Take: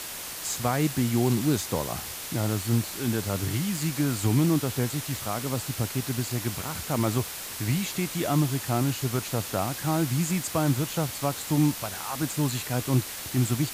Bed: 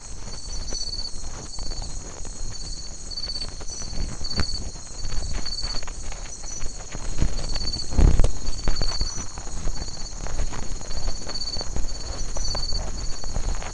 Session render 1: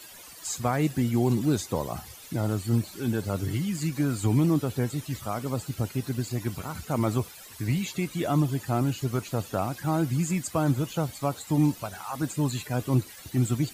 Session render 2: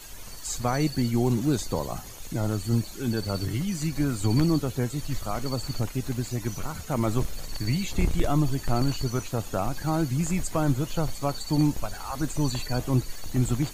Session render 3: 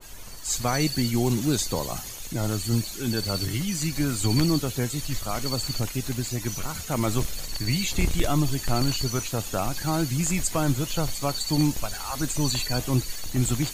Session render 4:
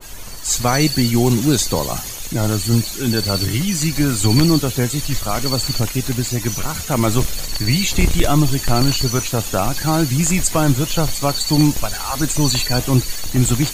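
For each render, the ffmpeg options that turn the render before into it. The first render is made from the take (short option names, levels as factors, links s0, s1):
-af "afftdn=nr=15:nf=-37"
-filter_complex "[1:a]volume=0.335[s0];[0:a][s0]amix=inputs=2:normalize=0"
-af "adynamicequalizer=threshold=0.00501:dfrequency=1800:dqfactor=0.7:tfrequency=1800:tqfactor=0.7:attack=5:release=100:ratio=0.375:range=4:mode=boostabove:tftype=highshelf"
-af "volume=2.66,alimiter=limit=0.794:level=0:latency=1"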